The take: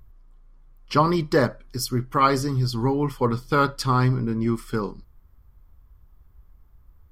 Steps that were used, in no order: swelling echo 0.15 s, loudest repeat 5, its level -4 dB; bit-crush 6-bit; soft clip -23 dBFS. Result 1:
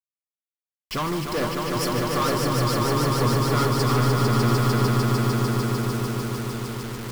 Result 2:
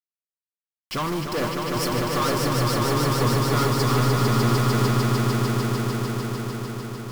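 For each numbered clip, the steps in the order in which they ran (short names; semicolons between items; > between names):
soft clip > swelling echo > bit-crush; soft clip > bit-crush > swelling echo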